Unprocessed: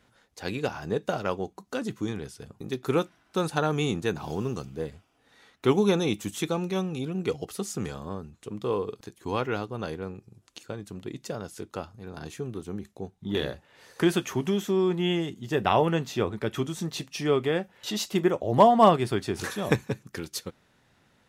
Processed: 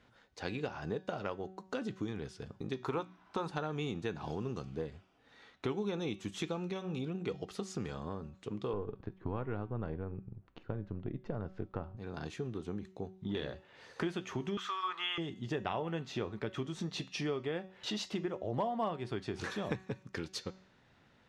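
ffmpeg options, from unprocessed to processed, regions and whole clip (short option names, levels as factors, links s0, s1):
-filter_complex "[0:a]asettb=1/sr,asplit=3[s0][s1][s2];[s0]atrim=end=2.754[s3];[s1]atrim=start=2.75:end=3.51,asetpts=PTS-STARTPTS,afade=t=in:d=0.004:c=qsin,afade=t=out:st=0.756:d=0.004:c=qsin,equalizer=f=970:w=2.3:g=11,bandreject=f=60:t=h:w=6,bandreject=f=120:t=h:w=6,bandreject=f=180:t=h:w=6,bandreject=f=240:t=h:w=6,bandreject=f=300:t=h:w=6[s4];[s2]atrim=start=3.506[s5];[s3][s4]acrossfade=d=0.004:c1=hsin:c2=qsin[s6];[s6][s5]acrossfade=d=0.004:c1=qsin:c2=hsin,asettb=1/sr,asplit=3[s7][s8][s9];[s7]atrim=end=8.734[s10];[s8]atrim=start=8.73:end=11.97,asetpts=PTS-STARTPTS,afade=t=in:d=0.004:c=qsin,afade=t=out:st=3.236:d=0.004:c=qsin,aeval=exprs='if(lt(val(0),0),0.708*val(0),val(0))':c=same,lowpass=1700,lowshelf=f=180:g=11[s11];[s9]atrim=start=11.966[s12];[s10][s11]acrossfade=d=0.004:c1=hsin:c2=qsin[s13];[s13][s12]acrossfade=d=0.004:c1=qsin:c2=hsin,asettb=1/sr,asplit=3[s14][s15][s16];[s14]atrim=end=14.574[s17];[s15]atrim=start=14.57:end=15.18,asetpts=PTS-STARTPTS,afade=t=in:d=0.004:c=qsin,afade=t=out:st=0.606:d=0.004:c=qsin,highpass=f=1200:t=q:w=9.3,equalizer=f=3500:w=0.78:g=7[s18];[s16]atrim=start=15.176[s19];[s17][s18]acrossfade=d=0.004:c1=hsin:c2=qsin[s20];[s20][s19]acrossfade=d=0.004:c1=qsin:c2=hsin,lowpass=4800,acompressor=threshold=0.0224:ratio=4,bandreject=f=188.1:t=h:w=4,bandreject=f=376.2:t=h:w=4,bandreject=f=564.3:t=h:w=4,bandreject=f=752.4:t=h:w=4,bandreject=f=940.5:t=h:w=4,bandreject=f=1128.6:t=h:w=4,bandreject=f=1316.7:t=h:w=4,bandreject=f=1504.8:t=h:w=4,bandreject=f=1692.9:t=h:w=4,bandreject=f=1881:t=h:w=4,bandreject=f=2069.1:t=h:w=4,bandreject=f=2257.2:t=h:w=4,bandreject=f=2445.3:t=h:w=4,bandreject=f=2633.4:t=h:w=4,bandreject=f=2821.5:t=h:w=4,bandreject=f=3009.6:t=h:w=4,bandreject=f=3197.7:t=h:w=4,bandreject=f=3385.8:t=h:w=4,bandreject=f=3573.9:t=h:w=4,bandreject=f=3762:t=h:w=4,bandreject=f=3950.1:t=h:w=4,bandreject=f=4138.2:t=h:w=4,bandreject=f=4326.3:t=h:w=4,bandreject=f=4514.4:t=h:w=4,bandreject=f=4702.5:t=h:w=4,bandreject=f=4890.6:t=h:w=4,bandreject=f=5078.7:t=h:w=4,bandreject=f=5266.8:t=h:w=4,bandreject=f=5454.9:t=h:w=4,bandreject=f=5643:t=h:w=4,bandreject=f=5831.1:t=h:w=4,bandreject=f=6019.2:t=h:w=4,bandreject=f=6207.3:t=h:w=4,bandreject=f=6395.4:t=h:w=4,bandreject=f=6583.5:t=h:w=4,bandreject=f=6771.6:t=h:w=4,bandreject=f=6959.7:t=h:w=4,bandreject=f=7147.8:t=h:w=4,bandreject=f=7335.9:t=h:w=4,bandreject=f=7524:t=h:w=4,volume=0.841"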